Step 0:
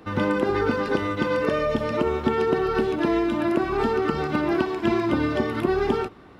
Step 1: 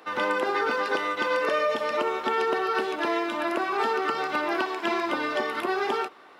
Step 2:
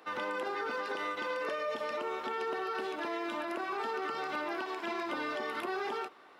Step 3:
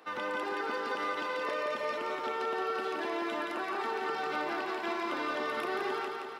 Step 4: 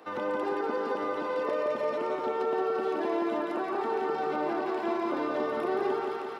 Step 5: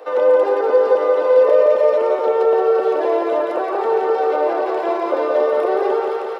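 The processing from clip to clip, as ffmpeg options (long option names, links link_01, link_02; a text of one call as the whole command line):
ffmpeg -i in.wav -af "highpass=620,volume=2.5dB" out.wav
ffmpeg -i in.wav -af "alimiter=limit=-21.5dB:level=0:latency=1:release=53,volume=-6dB" out.wav
ffmpeg -i in.wav -af "areverse,acompressor=mode=upward:threshold=-44dB:ratio=2.5,areverse,aecho=1:1:172|344|516|688|860|1032|1204|1376:0.631|0.366|0.212|0.123|0.0714|0.0414|0.024|0.0139" out.wav
ffmpeg -i in.wav -filter_complex "[0:a]acrossover=split=920[link_01][link_02];[link_01]acontrast=82[link_03];[link_02]alimiter=level_in=12.5dB:limit=-24dB:level=0:latency=1:release=58,volume=-12.5dB[link_04];[link_03][link_04]amix=inputs=2:normalize=0" out.wav
ffmpeg -i in.wav -af "highpass=frequency=510:width_type=q:width=4.9,volume=6.5dB" out.wav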